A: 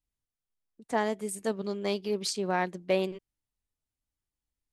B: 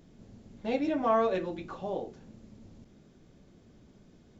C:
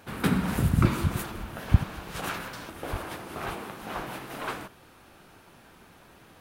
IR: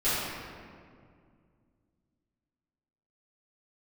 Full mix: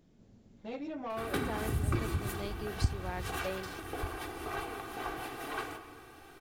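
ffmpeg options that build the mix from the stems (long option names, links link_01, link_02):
-filter_complex "[0:a]adelay=550,volume=-7.5dB[link_01];[1:a]asoftclip=type=tanh:threshold=-23.5dB,volume=-7.5dB[link_02];[2:a]aecho=1:1:2.6:0.76,adelay=1100,volume=-3.5dB,asplit=2[link_03][link_04];[link_04]volume=-23.5dB[link_05];[3:a]atrim=start_sample=2205[link_06];[link_05][link_06]afir=irnorm=-1:irlink=0[link_07];[link_01][link_02][link_03][link_07]amix=inputs=4:normalize=0,acompressor=threshold=-39dB:ratio=1.5"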